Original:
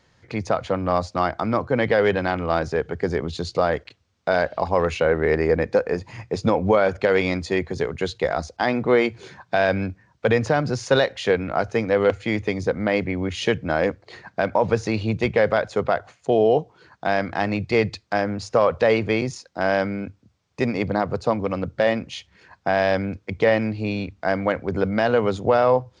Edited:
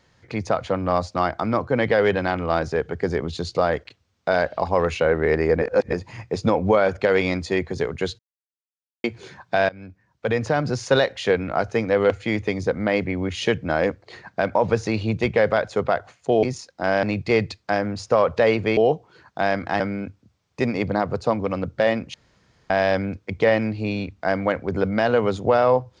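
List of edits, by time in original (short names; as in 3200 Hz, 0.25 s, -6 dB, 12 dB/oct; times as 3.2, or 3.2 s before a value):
5.62–5.93 reverse
8.19–9.04 mute
9.69–10.68 fade in, from -23.5 dB
16.43–17.46 swap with 19.2–19.8
22.14–22.7 room tone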